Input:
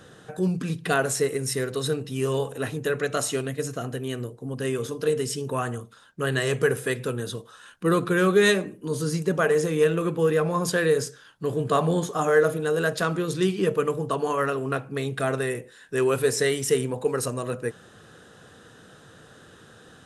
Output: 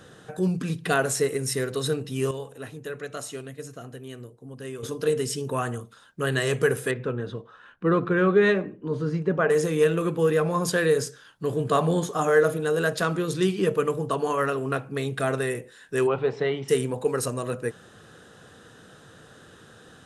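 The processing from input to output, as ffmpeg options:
ffmpeg -i in.wav -filter_complex "[0:a]asettb=1/sr,asplit=3[link_01][link_02][link_03];[link_01]atrim=end=6.914[link_04];[link_02]atrim=start=6.91:end=9.5,asetpts=PTS-STARTPTS,afade=type=in:duration=0.004:curve=qsin,afade=type=out:start_time=2.586:duration=0.004:curve=qsin,lowpass=2100[link_05];[link_03]atrim=start=9.496[link_06];[link_04][link_05]acrossfade=duration=0.004:curve1=hsin:curve2=qsin[link_07];[link_07][link_06]acrossfade=duration=0.004:curve1=qsin:curve2=hsin,asplit=3[link_08][link_09][link_10];[link_08]afade=type=out:start_time=16.06:duration=0.02[link_11];[link_09]highpass=150,equalizer=frequency=160:width_type=q:width=4:gain=6,equalizer=frequency=240:width_type=q:width=4:gain=-6,equalizer=frequency=480:width_type=q:width=4:gain=-4,equalizer=frequency=820:width_type=q:width=4:gain=9,equalizer=frequency=1700:width_type=q:width=4:gain=-9,equalizer=frequency=2500:width_type=q:width=4:gain=-4,lowpass=frequency=3000:width=0.5412,lowpass=frequency=3000:width=1.3066,afade=type=in:start_time=16.06:duration=0.02,afade=type=out:start_time=16.68:duration=0.02[link_12];[link_10]afade=type=in:start_time=16.68:duration=0.02[link_13];[link_11][link_12][link_13]amix=inputs=3:normalize=0,asplit=3[link_14][link_15][link_16];[link_14]atrim=end=2.312[link_17];[link_15]atrim=start=2.308:end=4.832,asetpts=PTS-STARTPTS,volume=-9dB[link_18];[link_16]atrim=start=4.828[link_19];[link_17][link_18]acrossfade=duration=0.004:curve1=hsin:curve2=hsin[link_20];[link_20][link_19]acrossfade=duration=0.004:curve1=hsin:curve2=hsin" out.wav

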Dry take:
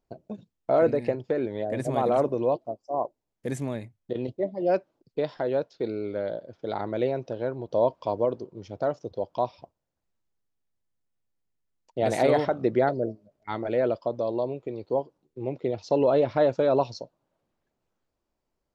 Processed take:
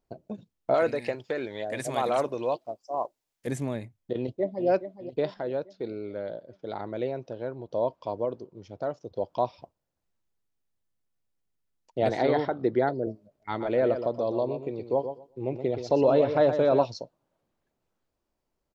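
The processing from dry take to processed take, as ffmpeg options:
ffmpeg -i in.wav -filter_complex "[0:a]asettb=1/sr,asplit=3[link_01][link_02][link_03];[link_01]atrim=end=0.744[link_04];[link_02]atrim=start=0.74:end=3.47,asetpts=PTS-STARTPTS,afade=type=in:duration=0.004:curve=qsin,afade=type=out:start_time=2.726:duration=0.004:curve=qsin,tiltshelf=frequency=930:gain=-8[link_05];[link_03]atrim=start=3.466[link_06];[link_04][link_05]acrossfade=duration=0.004:curve1=hsin:curve2=qsin[link_07];[link_07][link_06]acrossfade=duration=0.004:curve1=qsin:curve2=hsin,asplit=2[link_08][link_09];[link_09]afade=type=in:start_time=4.16:duration=0.01,afade=type=out:start_time=4.67:duration=0.01,aecho=0:1:420|840|1260|1680|2100|2520|2940:0.281838|0.169103|0.101462|0.0608771|0.0365262|0.0219157|0.0131494[link_10];[link_08][link_10]amix=inputs=2:normalize=0,asettb=1/sr,asplit=3[link_11][link_12][link_13];[link_11]atrim=end=12.094[link_14];[link_12]atrim=start=12.09:end=13.07,asetpts=PTS-STARTPTS,afade=type=in:duration=0.004:curve=qsin,afade=type=out:start_time=0.976:duration=0.004:curve=qsin,highpass=110,equalizer=frequency=190:width_type=q:width=4:gain=-8,equalizer=frequency=590:width_type=q:width=4:gain=-6,equalizer=frequency=1200:width_type=q:width=4:gain=-4,equalizer=frequency=2600:width_type=q:width=4:gain=-9,lowpass=frequency=4700:width=0.5412,lowpass=frequency=4700:width=1.3066[link_15];[link_13]atrim=start=13.066[link_16];[link_14][link_15]acrossfade=duration=0.004:curve1=hsin:curve2=qsin[link_17];[link_17][link_16]acrossfade=duration=0.004:curve1=qsin:curve2=hsin,asplit=3[link_18][link_19][link_20];[link_18]afade=type=out:start_time=13.59:duration=0.02[link_21];[link_19]aecho=1:1:122|244|366:0.355|0.0603|0.0103,afade=type=in:start_time=13.59:duration=0.02,afade=type=out:start_time=16.84:duration=0.02[link_22];[link_20]afade=type=in:start_time=16.84:duration=0.02[link_23];[link_21][link_22][link_23]amix=inputs=3:normalize=0,asplit=3[link_24][link_25][link_26];[link_24]atrim=end=5.342[link_27];[link_25]atrim=start=5.338:end=9.162,asetpts=PTS-STARTPTS,volume=-4.5dB[link_28];[link_26]atrim=start=9.158[link_29];[link_27][link_28]acrossfade=duration=0.004:curve1=hsin:curve2=hsin[link_30];[link_30][link_29]acrossfade=duration=0.004:curve1=hsin:curve2=hsin" out.wav

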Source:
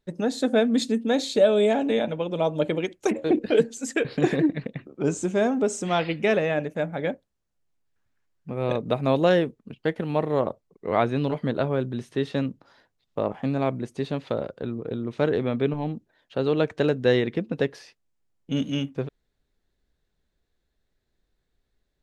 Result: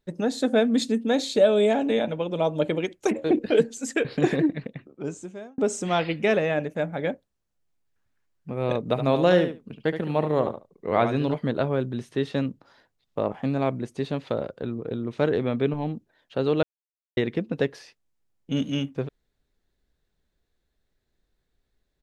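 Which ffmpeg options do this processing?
ffmpeg -i in.wav -filter_complex "[0:a]asplit=3[link_01][link_02][link_03];[link_01]afade=type=out:start_time=8.94:duration=0.02[link_04];[link_02]aecho=1:1:72|144:0.355|0.0532,afade=type=in:start_time=8.94:duration=0.02,afade=type=out:start_time=11.33:duration=0.02[link_05];[link_03]afade=type=in:start_time=11.33:duration=0.02[link_06];[link_04][link_05][link_06]amix=inputs=3:normalize=0,asplit=4[link_07][link_08][link_09][link_10];[link_07]atrim=end=5.58,asetpts=PTS-STARTPTS,afade=type=out:start_time=4.35:duration=1.23[link_11];[link_08]atrim=start=5.58:end=16.63,asetpts=PTS-STARTPTS,afade=type=in:duration=0.004:curve=hsin,afade=type=out:start_time=11.046:duration=0.004:curve=hsin[link_12];[link_09]atrim=start=16.63:end=17.17,asetpts=PTS-STARTPTS,volume=0[link_13];[link_10]atrim=start=17.17,asetpts=PTS-STARTPTS,afade=type=in:duration=0.004:curve=hsin[link_14];[link_11][link_12][link_13][link_14]concat=n=4:v=0:a=1" out.wav

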